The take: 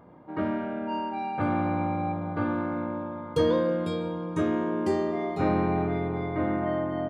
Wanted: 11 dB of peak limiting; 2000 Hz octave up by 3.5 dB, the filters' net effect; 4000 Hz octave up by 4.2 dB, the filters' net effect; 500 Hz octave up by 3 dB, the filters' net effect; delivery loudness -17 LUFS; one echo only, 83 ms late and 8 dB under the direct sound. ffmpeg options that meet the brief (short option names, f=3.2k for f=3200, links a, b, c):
-af "equalizer=f=500:t=o:g=3.5,equalizer=f=2k:t=o:g=3.5,equalizer=f=4k:t=o:g=4,alimiter=limit=-20.5dB:level=0:latency=1,aecho=1:1:83:0.398,volume=12dB"